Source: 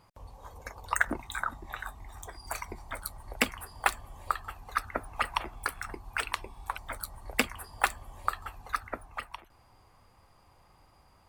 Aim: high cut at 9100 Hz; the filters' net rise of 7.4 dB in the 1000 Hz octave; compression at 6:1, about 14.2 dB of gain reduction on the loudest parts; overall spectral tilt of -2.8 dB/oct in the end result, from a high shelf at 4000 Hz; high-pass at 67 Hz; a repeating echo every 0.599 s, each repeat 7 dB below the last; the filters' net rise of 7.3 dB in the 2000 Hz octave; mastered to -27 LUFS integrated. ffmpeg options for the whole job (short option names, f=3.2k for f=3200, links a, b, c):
-af "highpass=67,lowpass=9.1k,equalizer=f=1k:t=o:g=7,equalizer=f=2k:t=o:g=5,highshelf=f=4k:g=8.5,acompressor=threshold=-32dB:ratio=6,aecho=1:1:599|1198|1797|2396|2995:0.447|0.201|0.0905|0.0407|0.0183,volume=11.5dB"